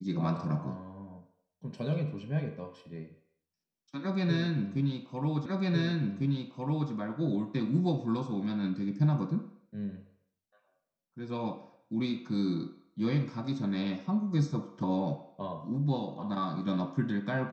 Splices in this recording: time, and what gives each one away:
5.46 s: repeat of the last 1.45 s

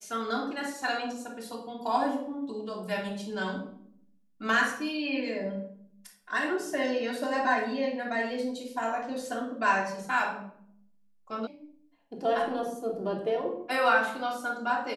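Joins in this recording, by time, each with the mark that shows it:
11.47 s: sound stops dead

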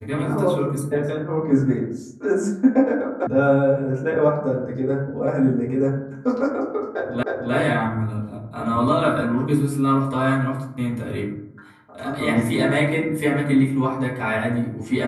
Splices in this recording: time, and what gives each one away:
3.27 s: sound stops dead
7.23 s: repeat of the last 0.31 s

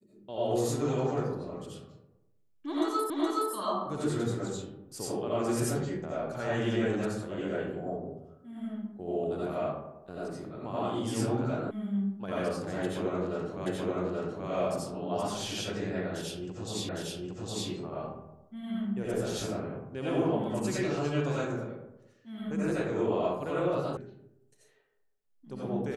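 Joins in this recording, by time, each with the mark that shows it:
3.10 s: repeat of the last 0.42 s
11.71 s: sound stops dead
13.66 s: repeat of the last 0.83 s
16.89 s: repeat of the last 0.81 s
23.97 s: sound stops dead

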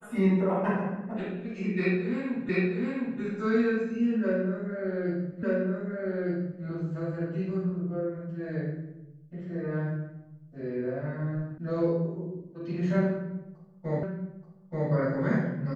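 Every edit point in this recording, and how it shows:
2.49 s: repeat of the last 0.71 s
5.43 s: repeat of the last 1.21 s
11.58 s: sound stops dead
14.03 s: repeat of the last 0.88 s

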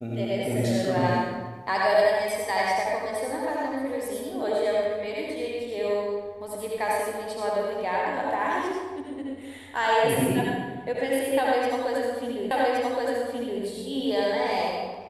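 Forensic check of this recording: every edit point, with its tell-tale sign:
12.51 s: repeat of the last 1.12 s

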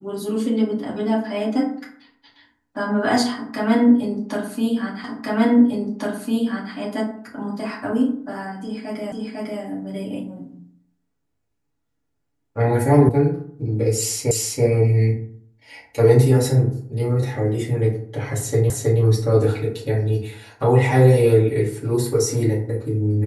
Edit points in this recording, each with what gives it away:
5.04 s: repeat of the last 1.7 s
9.12 s: repeat of the last 0.5 s
13.09 s: sound stops dead
14.31 s: repeat of the last 0.33 s
18.70 s: repeat of the last 0.32 s

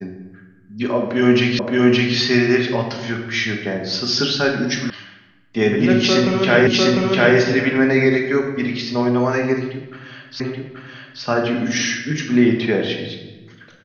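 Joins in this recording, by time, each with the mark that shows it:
1.59 s: repeat of the last 0.57 s
4.90 s: sound stops dead
6.67 s: repeat of the last 0.7 s
10.40 s: repeat of the last 0.83 s

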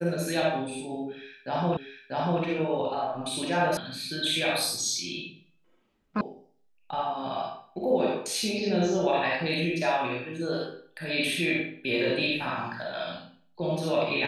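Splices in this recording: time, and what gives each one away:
1.77 s: repeat of the last 0.64 s
3.77 s: sound stops dead
6.21 s: sound stops dead

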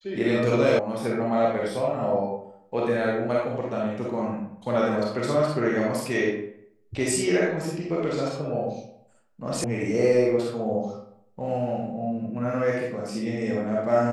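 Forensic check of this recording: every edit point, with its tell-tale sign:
0.79 s: sound stops dead
9.64 s: sound stops dead

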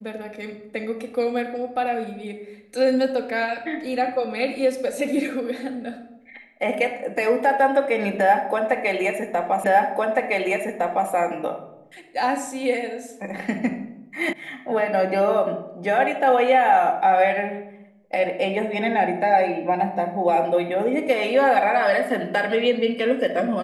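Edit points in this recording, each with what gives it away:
9.64 s: repeat of the last 1.46 s
14.33 s: sound stops dead

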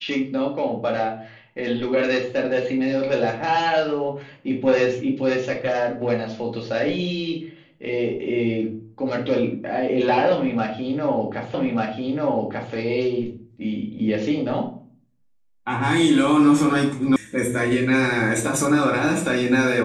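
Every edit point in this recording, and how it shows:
11.54 s: repeat of the last 1.19 s
17.16 s: sound stops dead

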